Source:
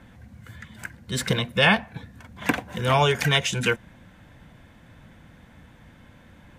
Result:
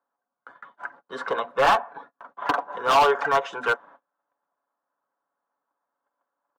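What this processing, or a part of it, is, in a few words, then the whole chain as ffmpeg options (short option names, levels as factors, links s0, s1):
walkie-talkie: -af "highpass=280,highpass=550,lowpass=2500,highshelf=f=1600:t=q:w=3:g=-10,asoftclip=type=hard:threshold=0.0891,agate=range=0.0282:threshold=0.00251:ratio=16:detection=peak,aecho=1:1:7.1:0.43,volume=1.88"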